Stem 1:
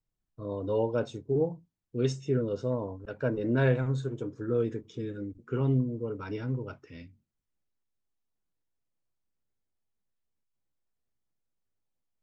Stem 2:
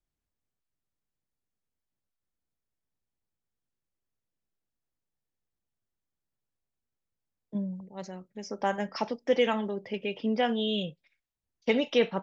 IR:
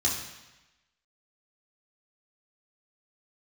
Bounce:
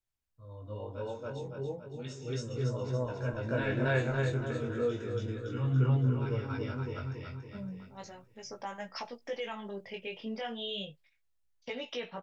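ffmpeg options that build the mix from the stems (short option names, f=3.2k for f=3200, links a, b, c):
-filter_complex "[0:a]dynaudnorm=f=380:g=13:m=9dB,volume=2dB,asplit=3[a][b][c];[b]volume=-23dB[d];[c]volume=-6.5dB[e];[1:a]alimiter=limit=-22.5dB:level=0:latency=1:release=257,volume=1.5dB,asplit=2[f][g];[g]apad=whole_len=539261[h];[a][h]sidechaingate=range=-10dB:threshold=-58dB:ratio=16:detection=peak[i];[2:a]atrim=start_sample=2205[j];[d][j]afir=irnorm=-1:irlink=0[k];[e]aecho=0:1:282|564|846|1128|1410|1692|1974:1|0.51|0.26|0.133|0.0677|0.0345|0.0176[l];[i][f][k][l]amix=inputs=4:normalize=0,equalizer=f=270:w=0.69:g=-9,flanger=delay=16:depth=6.2:speed=0.34"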